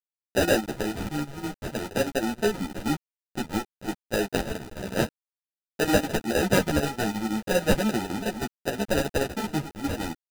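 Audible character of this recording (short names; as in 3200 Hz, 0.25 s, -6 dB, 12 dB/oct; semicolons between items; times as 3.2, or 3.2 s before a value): a quantiser's noise floor 6-bit, dither none; chopped level 6.3 Hz, depth 65%, duty 75%; aliases and images of a low sample rate 1100 Hz, jitter 0%; a shimmering, thickened sound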